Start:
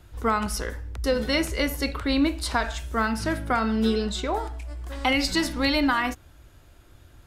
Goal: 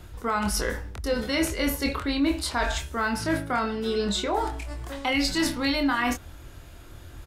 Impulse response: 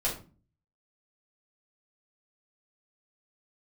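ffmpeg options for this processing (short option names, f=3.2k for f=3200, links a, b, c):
-filter_complex "[0:a]areverse,acompressor=threshold=-30dB:ratio=6,areverse,asplit=2[a][b];[b]adelay=25,volume=-5.5dB[c];[a][c]amix=inputs=2:normalize=0,volume=6.5dB"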